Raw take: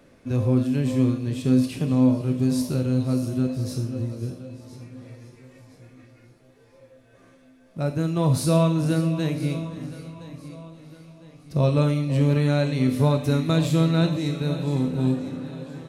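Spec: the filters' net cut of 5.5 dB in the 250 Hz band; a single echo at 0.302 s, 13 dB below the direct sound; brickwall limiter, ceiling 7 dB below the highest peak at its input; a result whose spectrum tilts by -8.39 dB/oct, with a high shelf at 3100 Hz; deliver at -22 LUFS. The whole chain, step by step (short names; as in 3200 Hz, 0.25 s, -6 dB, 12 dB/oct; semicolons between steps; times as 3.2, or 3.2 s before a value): bell 250 Hz -7.5 dB; high shelf 3100 Hz -7.5 dB; limiter -18 dBFS; echo 0.302 s -13 dB; gain +6 dB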